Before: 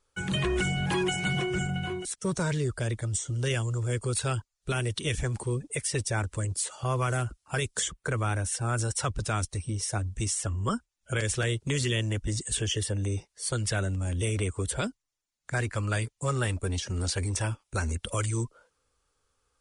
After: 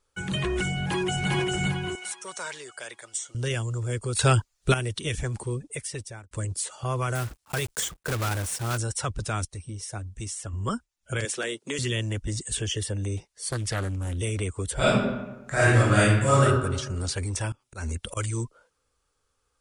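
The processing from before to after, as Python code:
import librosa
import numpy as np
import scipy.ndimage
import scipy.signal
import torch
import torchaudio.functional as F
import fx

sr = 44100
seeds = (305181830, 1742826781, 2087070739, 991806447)

y = fx.echo_throw(x, sr, start_s=0.69, length_s=0.62, ms=400, feedback_pct=40, wet_db=-1.0)
y = fx.highpass(y, sr, hz=780.0, slope=12, at=(1.95, 3.35))
y = fx.block_float(y, sr, bits=3, at=(7.15, 8.79))
y = fx.highpass(y, sr, hz=230.0, slope=24, at=(11.25, 11.79))
y = fx.doppler_dist(y, sr, depth_ms=0.34, at=(13.17, 14.18))
y = fx.reverb_throw(y, sr, start_s=14.74, length_s=1.68, rt60_s=1.1, drr_db=-11.0)
y = fx.auto_swell(y, sr, attack_ms=124.0, at=(17.52, 18.17))
y = fx.edit(y, sr, fx.clip_gain(start_s=4.19, length_s=0.55, db=9.5),
    fx.fade_out_span(start_s=5.29, length_s=1.02, curve='qsin'),
    fx.clip_gain(start_s=9.45, length_s=1.08, db=-5.0), tone=tone)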